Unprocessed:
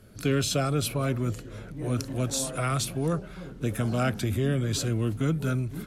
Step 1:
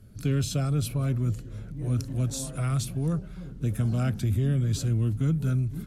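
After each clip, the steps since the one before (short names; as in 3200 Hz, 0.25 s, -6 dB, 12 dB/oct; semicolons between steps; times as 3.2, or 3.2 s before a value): tone controls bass +13 dB, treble +4 dB; gain -8.5 dB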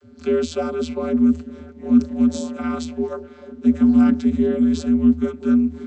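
vocoder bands 32, square 80.8 Hz; gain +9 dB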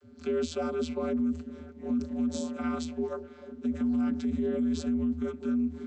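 limiter -16 dBFS, peak gain reduction 10.5 dB; gain -6.5 dB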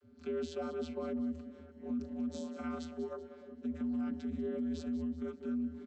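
air absorption 66 m; feedback echo 0.191 s, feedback 43%, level -13.5 dB; gain -7.5 dB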